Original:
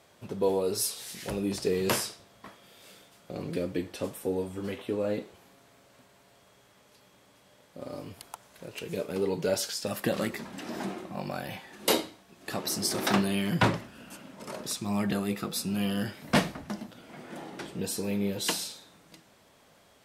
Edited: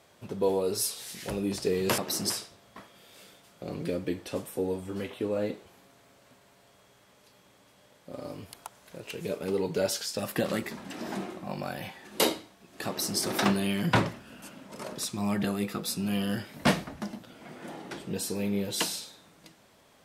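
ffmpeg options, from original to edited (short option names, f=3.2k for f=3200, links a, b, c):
-filter_complex "[0:a]asplit=3[a][b][c];[a]atrim=end=1.982[d];[b]atrim=start=12.548:end=12.872[e];[c]atrim=start=1.978[f];[d][e]acrossfade=d=0.004:c1=hsin:c2=hsin[g];[g][f]acrossfade=d=0.004:c1=hsin:c2=hsin"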